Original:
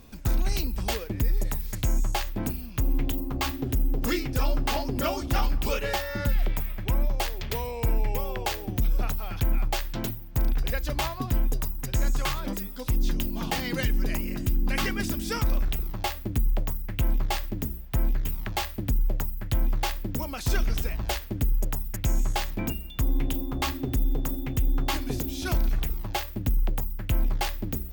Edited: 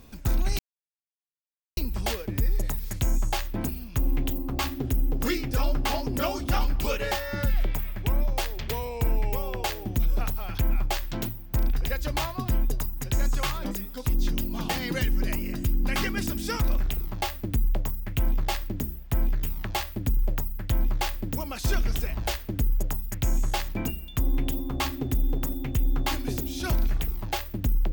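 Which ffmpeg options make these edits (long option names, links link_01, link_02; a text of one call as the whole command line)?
ffmpeg -i in.wav -filter_complex "[0:a]asplit=2[link_01][link_02];[link_01]atrim=end=0.59,asetpts=PTS-STARTPTS,afade=type=out:start_time=0.586:duration=0.004:curve=hsin,apad=pad_dur=1.18[link_03];[link_02]atrim=start=0.59,asetpts=PTS-STARTPTS,afade=type=in:duration=0.004:curve=hsin[link_04];[link_03][link_04]concat=n=2:v=0:a=1" out.wav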